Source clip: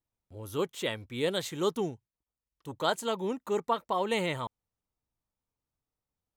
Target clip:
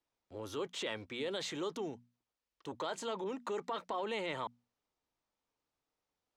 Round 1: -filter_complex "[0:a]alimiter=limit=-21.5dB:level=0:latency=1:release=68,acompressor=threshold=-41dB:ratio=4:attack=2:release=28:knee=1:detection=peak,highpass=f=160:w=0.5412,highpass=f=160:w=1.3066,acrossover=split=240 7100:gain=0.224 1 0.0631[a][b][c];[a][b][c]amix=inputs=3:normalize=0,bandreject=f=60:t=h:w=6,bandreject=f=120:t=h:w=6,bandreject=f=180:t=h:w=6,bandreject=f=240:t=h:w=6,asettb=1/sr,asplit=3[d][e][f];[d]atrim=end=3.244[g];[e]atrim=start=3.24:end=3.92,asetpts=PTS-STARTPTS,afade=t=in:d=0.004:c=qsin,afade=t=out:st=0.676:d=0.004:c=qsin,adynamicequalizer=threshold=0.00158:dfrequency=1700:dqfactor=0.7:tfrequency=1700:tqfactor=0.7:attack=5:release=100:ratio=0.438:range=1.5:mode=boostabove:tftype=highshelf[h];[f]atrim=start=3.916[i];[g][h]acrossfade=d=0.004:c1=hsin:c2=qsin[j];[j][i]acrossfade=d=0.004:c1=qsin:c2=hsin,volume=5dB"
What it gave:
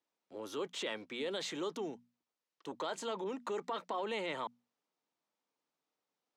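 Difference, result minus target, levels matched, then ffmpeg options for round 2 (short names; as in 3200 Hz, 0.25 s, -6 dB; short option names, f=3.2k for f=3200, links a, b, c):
125 Hz band -4.5 dB
-filter_complex "[0:a]alimiter=limit=-21.5dB:level=0:latency=1:release=68,acompressor=threshold=-41dB:ratio=4:attack=2:release=28:knee=1:detection=peak,acrossover=split=240 7100:gain=0.224 1 0.0631[a][b][c];[a][b][c]amix=inputs=3:normalize=0,bandreject=f=60:t=h:w=6,bandreject=f=120:t=h:w=6,bandreject=f=180:t=h:w=6,bandreject=f=240:t=h:w=6,asettb=1/sr,asplit=3[d][e][f];[d]atrim=end=3.244[g];[e]atrim=start=3.24:end=3.92,asetpts=PTS-STARTPTS,afade=t=in:d=0.004:c=qsin,afade=t=out:st=0.676:d=0.004:c=qsin,adynamicequalizer=threshold=0.00158:dfrequency=1700:dqfactor=0.7:tfrequency=1700:tqfactor=0.7:attack=5:release=100:ratio=0.438:range=1.5:mode=boostabove:tftype=highshelf[h];[f]atrim=start=3.916[i];[g][h]acrossfade=d=0.004:c1=hsin:c2=qsin[j];[j][i]acrossfade=d=0.004:c1=qsin:c2=hsin,volume=5dB"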